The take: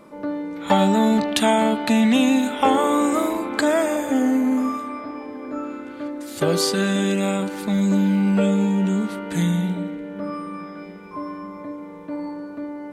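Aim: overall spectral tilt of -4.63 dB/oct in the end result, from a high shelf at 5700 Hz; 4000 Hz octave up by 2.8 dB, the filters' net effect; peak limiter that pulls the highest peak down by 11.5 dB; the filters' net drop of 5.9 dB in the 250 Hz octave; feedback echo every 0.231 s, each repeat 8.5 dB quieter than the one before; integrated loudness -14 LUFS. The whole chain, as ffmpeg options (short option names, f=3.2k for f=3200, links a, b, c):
-af "equalizer=f=250:t=o:g=-7.5,equalizer=f=4k:t=o:g=4.5,highshelf=f=5.7k:g=-3,alimiter=limit=-13.5dB:level=0:latency=1,aecho=1:1:231|462|693|924:0.376|0.143|0.0543|0.0206,volume=11dB"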